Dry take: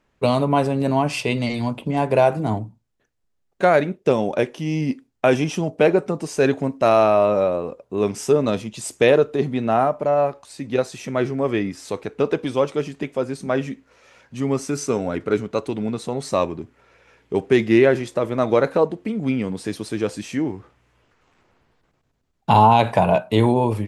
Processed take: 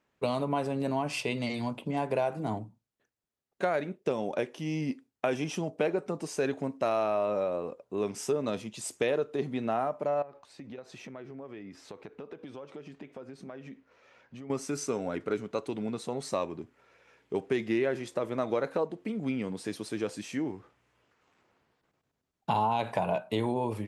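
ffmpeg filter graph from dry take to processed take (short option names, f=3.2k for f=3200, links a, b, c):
-filter_complex "[0:a]asettb=1/sr,asplit=3[a][b][c];[a]atrim=end=10.224[d];[b]atrim=start=10.22:end=14.5,asetpts=PTS-STARTPTS,afade=t=in:d=0.004:c=qsin,afade=t=out:st=4.276:d=0.004:c=qsin,equalizer=f=9.8k:w=0.59:g=-14,acompressor=threshold=-31dB:ratio=16:attack=3.2:release=140:knee=1:detection=peak[e];[c]atrim=start=14.496[f];[d][e]acrossfade=d=0.004:c1=hsin:c2=qsin[g];[g][f]acrossfade=d=0.004:c1=qsin:c2=hsin,highpass=f=160:p=1,acompressor=threshold=-20dB:ratio=2.5,volume=-7dB"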